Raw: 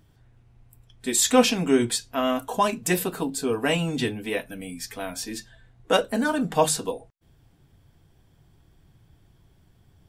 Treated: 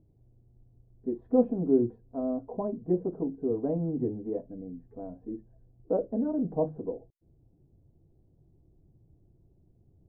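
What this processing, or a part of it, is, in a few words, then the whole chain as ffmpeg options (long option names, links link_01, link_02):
under water: -af "lowpass=frequency=610:width=0.5412,lowpass=frequency=610:width=1.3066,equalizer=frequency=340:width_type=o:width=0.34:gain=5,volume=-4.5dB"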